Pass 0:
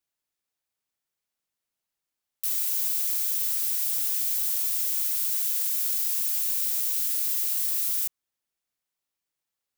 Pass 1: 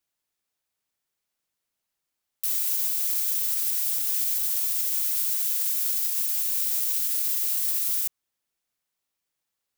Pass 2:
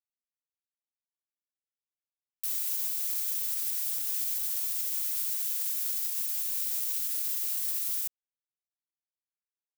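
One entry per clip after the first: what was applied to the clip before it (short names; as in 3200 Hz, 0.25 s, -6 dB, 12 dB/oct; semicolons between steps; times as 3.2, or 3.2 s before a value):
limiter -18.5 dBFS, peak gain reduction 5 dB; gain +3 dB
crossover distortion -48 dBFS; gain -5 dB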